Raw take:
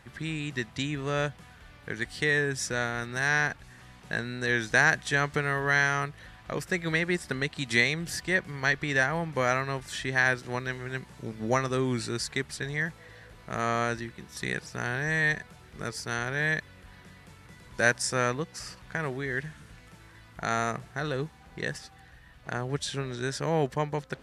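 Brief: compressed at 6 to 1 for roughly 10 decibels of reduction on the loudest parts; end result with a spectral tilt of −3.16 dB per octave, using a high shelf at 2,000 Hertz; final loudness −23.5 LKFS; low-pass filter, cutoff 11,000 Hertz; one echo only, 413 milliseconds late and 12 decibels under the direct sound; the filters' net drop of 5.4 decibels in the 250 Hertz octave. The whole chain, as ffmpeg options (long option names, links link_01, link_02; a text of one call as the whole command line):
ffmpeg -i in.wav -af "lowpass=11000,equalizer=frequency=250:width_type=o:gain=-8.5,highshelf=frequency=2000:gain=3,acompressor=threshold=-27dB:ratio=6,aecho=1:1:413:0.251,volume=9.5dB" out.wav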